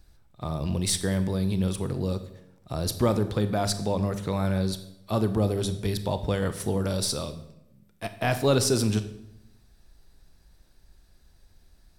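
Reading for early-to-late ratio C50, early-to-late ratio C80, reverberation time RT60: 12.5 dB, 15.0 dB, 0.85 s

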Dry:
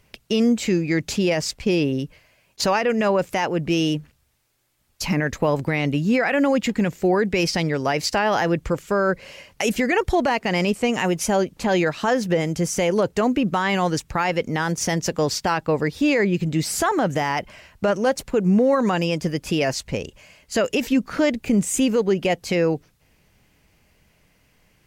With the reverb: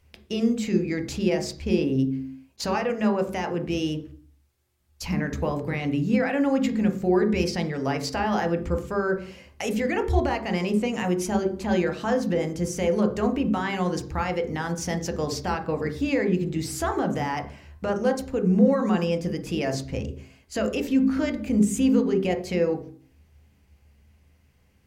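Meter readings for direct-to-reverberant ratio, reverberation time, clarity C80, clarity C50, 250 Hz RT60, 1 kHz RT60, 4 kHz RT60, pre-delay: 4.0 dB, 0.50 s, 14.5 dB, 10.0 dB, 0.85 s, 0.45 s, 0.40 s, 3 ms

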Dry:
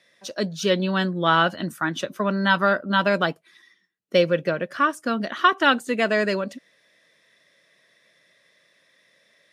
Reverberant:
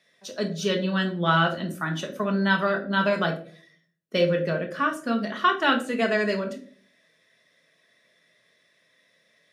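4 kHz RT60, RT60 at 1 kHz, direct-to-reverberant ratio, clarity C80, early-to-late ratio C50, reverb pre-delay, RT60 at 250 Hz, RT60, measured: 0.30 s, 0.40 s, 2.5 dB, 15.5 dB, 10.5 dB, 5 ms, 0.70 s, 0.50 s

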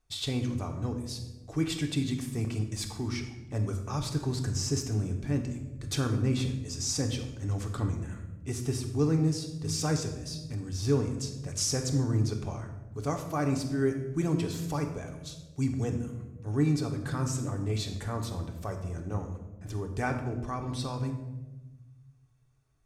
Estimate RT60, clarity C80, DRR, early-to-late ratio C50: 1.1 s, 10.0 dB, 3.0 dB, 8.0 dB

